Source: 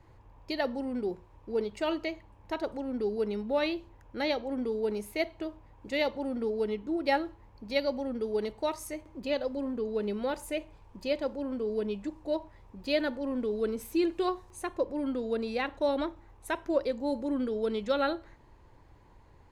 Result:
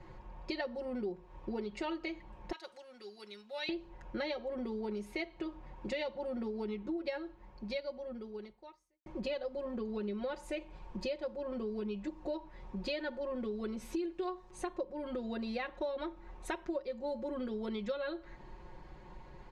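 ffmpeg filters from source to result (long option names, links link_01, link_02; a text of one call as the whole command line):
ffmpeg -i in.wav -filter_complex "[0:a]asettb=1/sr,asplit=3[link_01][link_02][link_03];[link_01]atrim=end=2.524[link_04];[link_02]atrim=start=2.52:end=3.69,asetpts=PTS-STARTPTS,afade=type=in:duration=0.004:curve=qsin,afade=type=out:start_time=1.166:duration=0.004:curve=qsin,aderivative[link_05];[link_03]atrim=start=3.686[link_06];[link_04][link_05]acrossfade=duration=0.004:curve1=hsin:curve2=qsin[link_07];[link_07][link_06]acrossfade=duration=0.004:curve1=qsin:curve2=hsin,asplit=2[link_08][link_09];[link_08]atrim=end=9.06,asetpts=PTS-STARTPTS,afade=type=out:start_time=7.09:duration=1.97:curve=qua[link_10];[link_09]atrim=start=9.06,asetpts=PTS-STARTPTS,afade=type=in:duration=0.004:curve=hsin[link_11];[link_10][link_11]concat=n=2:v=0:a=1,lowpass=5500,aecho=1:1:5.5:0.89,acompressor=threshold=-40dB:ratio=6,volume=4dB" out.wav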